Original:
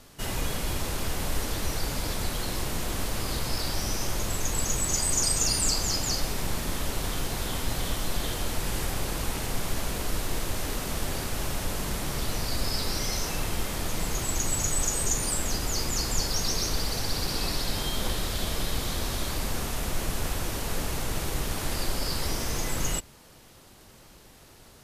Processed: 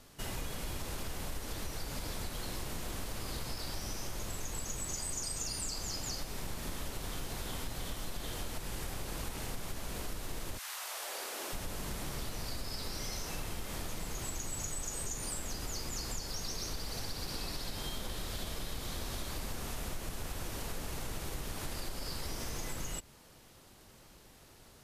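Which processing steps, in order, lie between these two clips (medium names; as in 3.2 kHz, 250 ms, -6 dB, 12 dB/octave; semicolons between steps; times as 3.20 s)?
10.57–11.52 s: high-pass 1.1 kHz -> 270 Hz 24 dB/octave; compression, threshold -29 dBFS, peak gain reduction 9.5 dB; trim -5.5 dB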